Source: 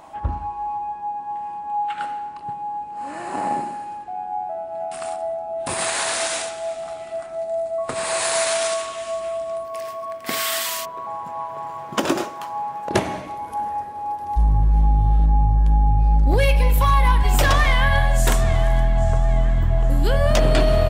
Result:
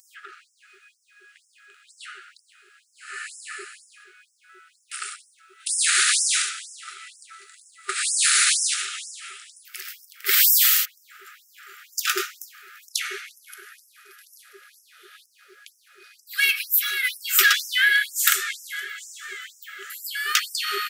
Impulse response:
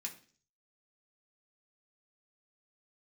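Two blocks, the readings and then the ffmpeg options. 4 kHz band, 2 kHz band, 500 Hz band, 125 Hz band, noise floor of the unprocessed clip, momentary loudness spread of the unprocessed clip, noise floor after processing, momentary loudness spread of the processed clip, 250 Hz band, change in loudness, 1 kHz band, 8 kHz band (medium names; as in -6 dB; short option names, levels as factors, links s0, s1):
+5.0 dB, +4.0 dB, -22.0 dB, under -40 dB, -34 dBFS, 13 LU, -64 dBFS, 21 LU, under -20 dB, +2.0 dB, -13.5 dB, +6.0 dB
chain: -af "aexciter=amount=3.9:drive=1.2:freq=12000,afftfilt=real='re*(1-between(b*sr/4096,410,1200))':imag='im*(1-between(b*sr/4096,410,1200))':win_size=4096:overlap=0.75,afftfilt=real='re*gte(b*sr/1024,370*pow(5200/370,0.5+0.5*sin(2*PI*2.1*pts/sr)))':imag='im*gte(b*sr/1024,370*pow(5200/370,0.5+0.5*sin(2*PI*2.1*pts/sr)))':win_size=1024:overlap=0.75,volume=2"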